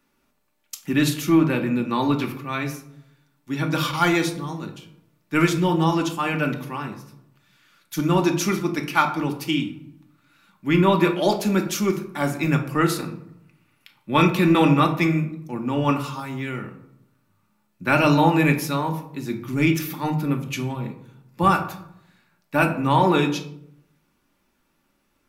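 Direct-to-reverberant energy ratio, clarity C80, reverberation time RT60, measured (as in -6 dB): 2.5 dB, 14.0 dB, 0.70 s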